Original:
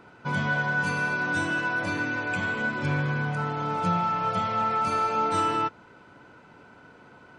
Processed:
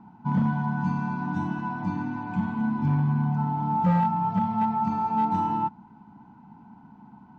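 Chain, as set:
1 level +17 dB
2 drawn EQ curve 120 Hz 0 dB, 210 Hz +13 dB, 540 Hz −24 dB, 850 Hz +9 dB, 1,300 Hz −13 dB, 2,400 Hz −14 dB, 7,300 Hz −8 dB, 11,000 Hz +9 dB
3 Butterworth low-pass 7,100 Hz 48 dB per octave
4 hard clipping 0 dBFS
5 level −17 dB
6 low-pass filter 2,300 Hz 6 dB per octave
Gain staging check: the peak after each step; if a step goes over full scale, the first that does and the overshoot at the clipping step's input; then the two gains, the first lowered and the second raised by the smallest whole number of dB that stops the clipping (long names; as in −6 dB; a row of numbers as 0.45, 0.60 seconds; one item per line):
+2.5, +7.0, +7.0, 0.0, −17.0, −17.0 dBFS
step 1, 7.0 dB
step 1 +10 dB, step 5 −10 dB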